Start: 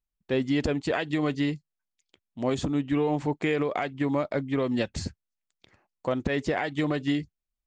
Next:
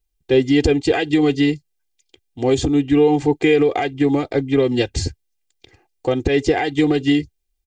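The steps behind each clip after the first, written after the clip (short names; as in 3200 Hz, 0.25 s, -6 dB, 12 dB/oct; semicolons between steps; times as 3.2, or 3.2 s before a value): bell 1200 Hz -11 dB 1 oct; comb 2.5 ms, depth 93%; gain +9 dB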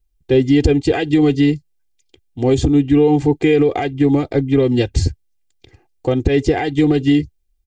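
low shelf 280 Hz +10 dB; in parallel at -1 dB: limiter -4.5 dBFS, peak gain reduction 7 dB; on the sum: gain -7 dB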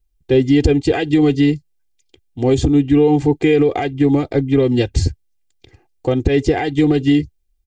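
nothing audible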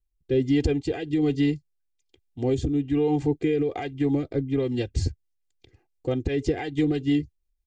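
rotary speaker horn 1.2 Hz, later 6 Hz, at 4.51; gain -8.5 dB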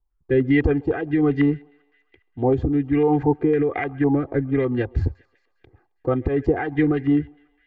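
thinning echo 0.134 s, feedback 68%, high-pass 600 Hz, level -22 dB; stepped low-pass 9.9 Hz 920–1900 Hz; gain +3.5 dB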